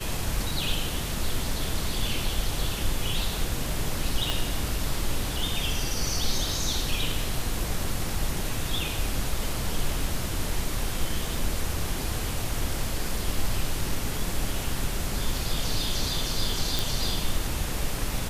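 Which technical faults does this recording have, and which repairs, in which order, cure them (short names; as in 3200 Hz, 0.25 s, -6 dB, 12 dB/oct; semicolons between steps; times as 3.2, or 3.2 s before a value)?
4.3 pop
16.79 pop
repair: de-click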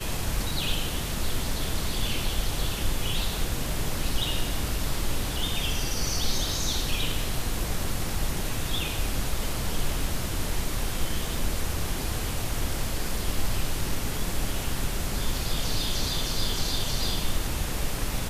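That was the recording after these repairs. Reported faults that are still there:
4.3 pop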